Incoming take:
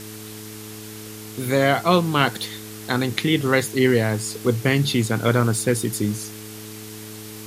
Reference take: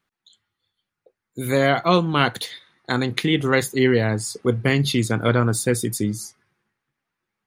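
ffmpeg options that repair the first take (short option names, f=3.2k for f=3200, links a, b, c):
-af "bandreject=f=107.5:t=h:w=4,bandreject=f=215:t=h:w=4,bandreject=f=322.5:t=h:w=4,bandreject=f=430:t=h:w=4,afwtdn=0.011"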